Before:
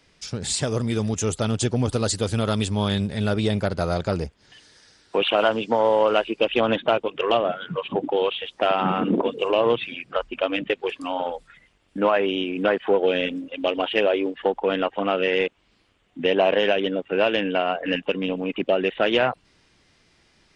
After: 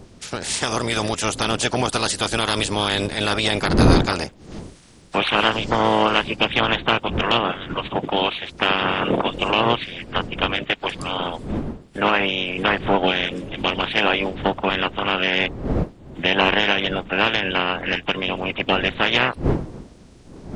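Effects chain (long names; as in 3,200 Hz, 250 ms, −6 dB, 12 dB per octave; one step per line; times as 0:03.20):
ceiling on every frequency bin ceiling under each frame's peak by 22 dB
wind on the microphone 280 Hz −31 dBFS
level +1.5 dB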